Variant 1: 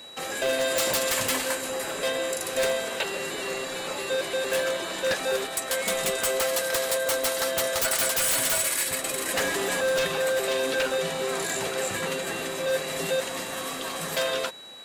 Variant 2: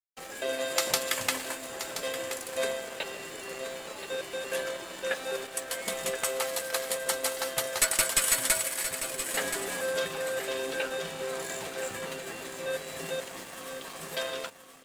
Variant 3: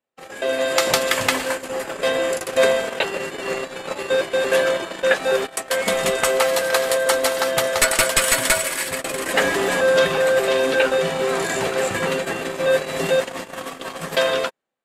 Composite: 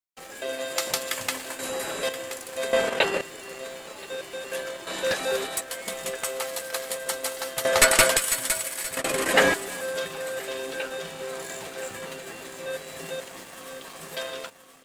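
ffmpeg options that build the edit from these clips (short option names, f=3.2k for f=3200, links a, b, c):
-filter_complex "[0:a]asplit=2[a][b];[2:a]asplit=3[c][d][e];[1:a]asplit=6[f][g][h][i][j][k];[f]atrim=end=1.592[l];[a]atrim=start=1.588:end=2.092[m];[g]atrim=start=2.088:end=2.732[n];[c]atrim=start=2.728:end=3.212[o];[h]atrim=start=3.208:end=4.872[p];[b]atrim=start=4.868:end=5.612[q];[i]atrim=start=5.608:end=7.652[r];[d]atrim=start=7.648:end=8.172[s];[j]atrim=start=8.168:end=8.972[t];[e]atrim=start=8.968:end=9.542[u];[k]atrim=start=9.538[v];[l][m]acrossfade=d=0.004:c1=hsin:c2=hsin[w];[w][n]acrossfade=d=0.004:c1=hsin:c2=hsin[x];[x][o]acrossfade=d=0.004:c1=hsin:c2=hsin[y];[y][p]acrossfade=d=0.004:c1=hsin:c2=hsin[z];[z][q]acrossfade=d=0.004:c1=hsin:c2=hsin[aa];[aa][r]acrossfade=d=0.004:c1=hsin:c2=hsin[ab];[ab][s]acrossfade=d=0.004:c1=hsin:c2=hsin[ac];[ac][t]acrossfade=d=0.004:c1=hsin:c2=hsin[ad];[ad][u]acrossfade=d=0.004:c1=hsin:c2=hsin[ae];[ae][v]acrossfade=d=0.004:c1=hsin:c2=hsin"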